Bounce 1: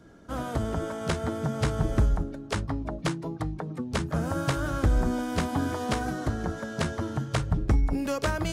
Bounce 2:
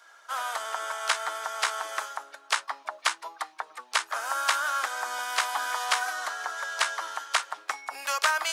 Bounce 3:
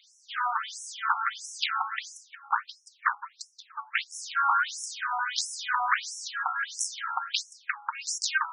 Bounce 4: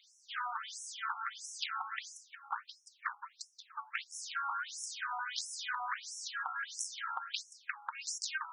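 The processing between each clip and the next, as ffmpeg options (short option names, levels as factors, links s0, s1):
-af "highpass=f=920:w=0.5412,highpass=f=920:w=1.3066,volume=2.66"
-af "aeval=exprs='0.501*sin(PI/2*2.82*val(0)/0.501)':c=same,afftfilt=real='re*between(b*sr/1024,990*pow(7600/990,0.5+0.5*sin(2*PI*1.5*pts/sr))/1.41,990*pow(7600/990,0.5+0.5*sin(2*PI*1.5*pts/sr))*1.41)':imag='im*between(b*sr/1024,990*pow(7600/990,0.5+0.5*sin(2*PI*1.5*pts/sr))/1.41,990*pow(7600/990,0.5+0.5*sin(2*PI*1.5*pts/sr))*1.41)':win_size=1024:overlap=0.75,volume=0.473"
-af "acompressor=threshold=0.0316:ratio=5,volume=0.562"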